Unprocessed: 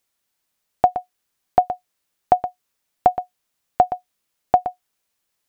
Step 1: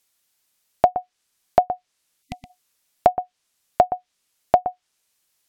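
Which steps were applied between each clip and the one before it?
gain on a spectral selection 0:02.22–0:02.50, 270–2,000 Hz −24 dB
treble cut that deepens with the level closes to 790 Hz, closed at −15 dBFS
high-shelf EQ 2,400 Hz +8 dB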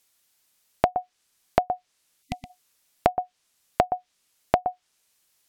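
downward compressor 6 to 1, threshold −19 dBFS, peak gain reduction 9.5 dB
level +2 dB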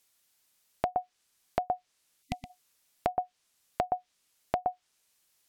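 brickwall limiter −8 dBFS, peak gain reduction 6.5 dB
level −3 dB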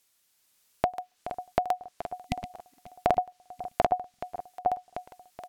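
automatic gain control gain up to 3 dB
repeating echo 425 ms, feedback 42%, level −12 dB
regular buffer underruns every 0.18 s, samples 2,048, repeat, from 0:00.71
level +1 dB

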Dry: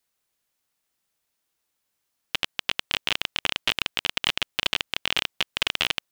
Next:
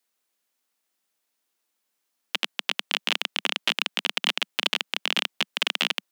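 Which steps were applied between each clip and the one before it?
Butterworth high-pass 190 Hz 48 dB per octave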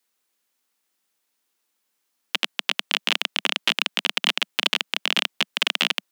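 parametric band 650 Hz −4.5 dB 0.25 octaves
level +3 dB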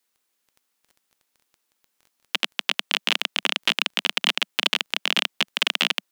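surface crackle 11 per second −40 dBFS

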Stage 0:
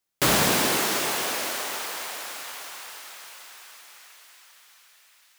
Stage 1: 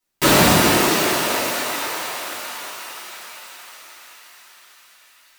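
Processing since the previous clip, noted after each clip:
rectangular room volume 730 cubic metres, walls furnished, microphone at 9.8 metres
level −4.5 dB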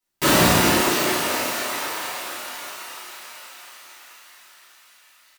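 double-tracking delay 33 ms −3.5 dB
level −4 dB

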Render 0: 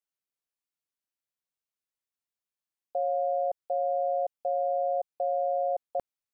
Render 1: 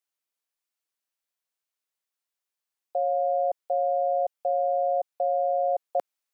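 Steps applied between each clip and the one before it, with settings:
Bessel high-pass filter 440 Hz
in parallel at −2.5 dB: speech leveller within 4 dB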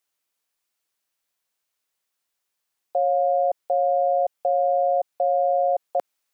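brickwall limiter −22.5 dBFS, peak gain reduction 6 dB
level +8 dB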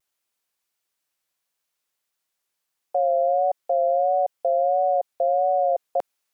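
pitch vibrato 1.5 Hz 63 cents

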